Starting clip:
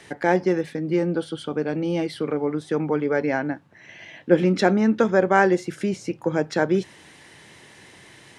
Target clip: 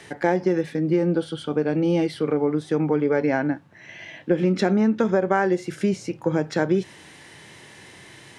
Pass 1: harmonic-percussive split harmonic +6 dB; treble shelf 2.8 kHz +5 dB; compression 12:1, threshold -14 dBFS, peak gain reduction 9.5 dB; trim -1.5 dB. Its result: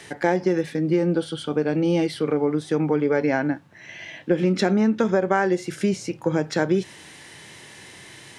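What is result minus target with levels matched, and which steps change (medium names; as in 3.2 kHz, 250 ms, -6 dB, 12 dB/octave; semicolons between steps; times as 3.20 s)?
4 kHz band +3.0 dB
remove: treble shelf 2.8 kHz +5 dB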